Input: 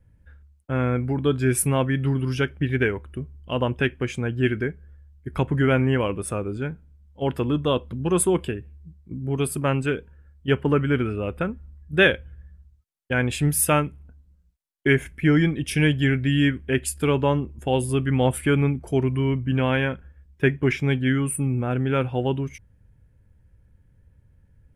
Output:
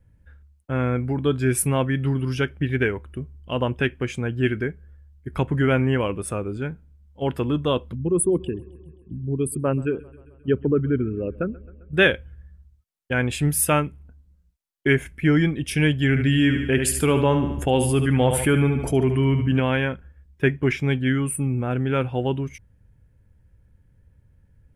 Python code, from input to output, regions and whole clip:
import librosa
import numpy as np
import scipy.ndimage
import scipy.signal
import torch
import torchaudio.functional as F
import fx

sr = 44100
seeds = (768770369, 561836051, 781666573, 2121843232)

y = fx.chain(x, sr, fx.envelope_sharpen(power=2.0),
    fx.echo_wet_lowpass(ms=132, feedback_pct=65, hz=3800.0, wet_db=-22.5), at=(7.95, 11.93))
y = fx.chain(y, sr, fx.echo_feedback(ms=73, feedback_pct=39, wet_db=-10.5),
    fx.env_flatten(amount_pct=50), at=(16.09, 19.6))